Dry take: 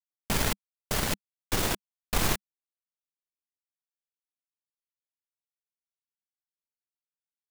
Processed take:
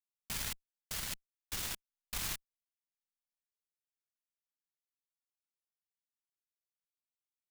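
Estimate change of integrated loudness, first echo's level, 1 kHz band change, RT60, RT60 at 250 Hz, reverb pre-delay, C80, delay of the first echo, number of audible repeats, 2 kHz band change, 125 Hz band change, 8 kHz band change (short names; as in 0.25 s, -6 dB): -9.5 dB, none, -16.5 dB, none, none, none, none, none, none, -11.5 dB, -16.5 dB, -7.5 dB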